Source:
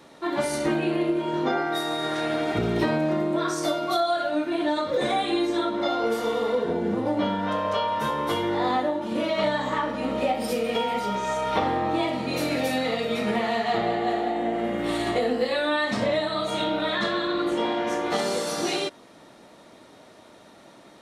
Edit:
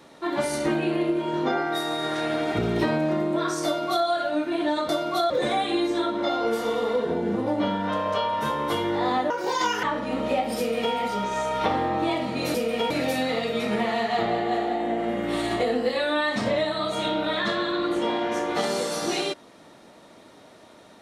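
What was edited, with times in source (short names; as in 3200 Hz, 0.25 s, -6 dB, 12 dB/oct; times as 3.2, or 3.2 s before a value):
3.65–4.06 copy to 4.89
8.89–9.75 speed 161%
10.5–10.86 copy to 12.46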